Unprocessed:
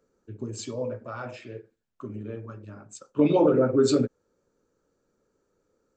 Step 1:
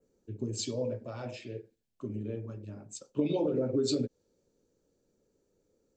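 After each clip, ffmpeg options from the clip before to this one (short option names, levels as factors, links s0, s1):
-af "adynamicequalizer=threshold=0.00355:dfrequency=4300:dqfactor=1.1:tfrequency=4300:tqfactor=1.1:attack=5:release=100:ratio=0.375:range=3:mode=boostabove:tftype=bell,acompressor=threshold=0.0562:ratio=6,equalizer=f=1300:t=o:w=1:g=-14"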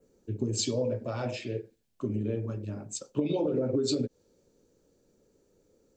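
-af "acompressor=threshold=0.0251:ratio=5,volume=2.24"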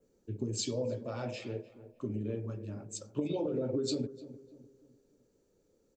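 -filter_complex "[0:a]asplit=2[s0][s1];[s1]adelay=300,lowpass=f=1300:p=1,volume=0.188,asplit=2[s2][s3];[s3]adelay=300,lowpass=f=1300:p=1,volume=0.43,asplit=2[s4][s5];[s5]adelay=300,lowpass=f=1300:p=1,volume=0.43,asplit=2[s6][s7];[s7]adelay=300,lowpass=f=1300:p=1,volume=0.43[s8];[s0][s2][s4][s6][s8]amix=inputs=5:normalize=0,volume=0.562"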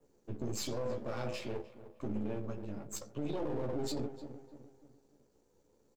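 -filter_complex "[0:a]aeval=exprs='if(lt(val(0),0),0.251*val(0),val(0))':c=same,asplit=2[s0][s1];[s1]adelay=14,volume=0.447[s2];[s0][s2]amix=inputs=2:normalize=0,alimiter=level_in=2:limit=0.0631:level=0:latency=1:release=21,volume=0.501,volume=1.41"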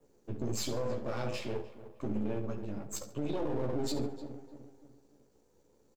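-af "aecho=1:1:70|140|210:0.2|0.0658|0.0217,volume=1.33"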